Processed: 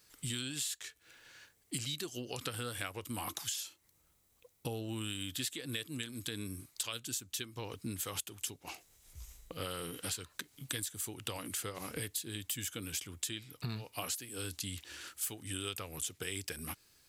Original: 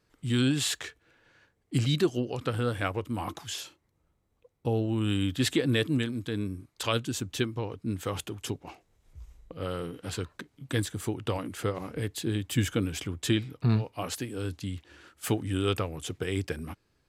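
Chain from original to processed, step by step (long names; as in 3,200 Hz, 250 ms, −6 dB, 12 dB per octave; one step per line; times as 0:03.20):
first-order pre-emphasis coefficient 0.9
downward compressor 10 to 1, threshold −52 dBFS, peak gain reduction 23 dB
level +16 dB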